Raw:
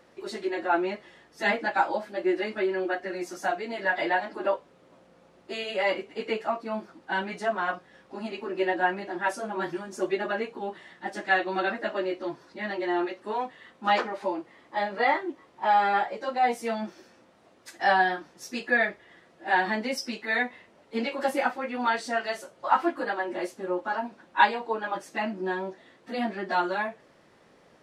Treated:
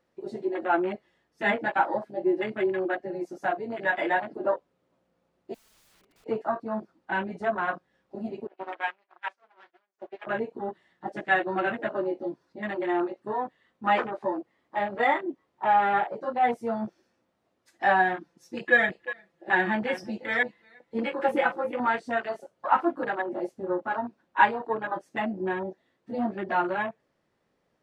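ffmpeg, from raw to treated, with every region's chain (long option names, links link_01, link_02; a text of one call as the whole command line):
ffmpeg -i in.wav -filter_complex "[0:a]asettb=1/sr,asplit=3[link_01][link_02][link_03];[link_01]atrim=end=5.544[link_04];[link_02]atrim=start=5.54:end=6.26,asetpts=PTS-STARTPTS,afade=type=in:duration=0.004:curve=qsin,afade=type=out:start_time=0.716:duration=0.004:curve=qsin,highshelf=frequency=2400:gain=-4.5,acompressor=threshold=-37dB:ratio=3:attack=3.2:release=140:knee=1:detection=peak,aeval=exprs='(mod(126*val(0)+1,2)-1)/126':channel_layout=same[link_05];[link_03]atrim=start=6.256[link_06];[link_04][link_05]acrossfade=duration=0.004:curve1=hsin:curve2=qsin[link_07];[link_07][link_06]acrossfade=duration=0.004:curve1=qsin:curve2=hsin,asettb=1/sr,asplit=3[link_08][link_09][link_10];[link_08]atrim=end=8.474[link_11];[link_09]atrim=start=8.47:end=10.27,asetpts=PTS-STARTPTS,afade=type=in:duration=0.004:curve=qsin,afade=type=out:start_time=1.796:duration=0.004:curve=qsin,agate=range=-33dB:threshold=-29dB:ratio=3:release=100:detection=peak,aeval=exprs='max(val(0),0)':channel_layout=same,highpass=670,lowpass=3800[link_12];[link_10]atrim=start=10.266[link_13];[link_11][link_12]acrossfade=duration=0.004:curve1=hsin:curve2=qsin[link_14];[link_14][link_13]acrossfade=duration=0.004:curve1=qsin:curve2=hsin,asettb=1/sr,asplit=3[link_15][link_16][link_17];[link_15]atrim=end=18.204[link_18];[link_16]atrim=start=18.2:end=21.8,asetpts=PTS-STARTPTS,afade=type=in:duration=0.004:curve=qsin,afade=type=out:start_time=3.596:duration=0.004:curve=qsin,bandreject=frequency=670:width=16,aecho=1:1:5.9:0.7,atrim=end_sample=158760,aecho=1:1:355:0.211,atrim=end_sample=158760[link_19];[link_17]atrim=start=21.796[link_20];[link_18][link_19]acrossfade=duration=0.004:curve1=hsin:curve2=qsin[link_21];[link_21][link_20]acrossfade=duration=0.004:curve1=qsin:curve2=hsin,afwtdn=0.0224,lowshelf=frequency=150:gain=6.5" out.wav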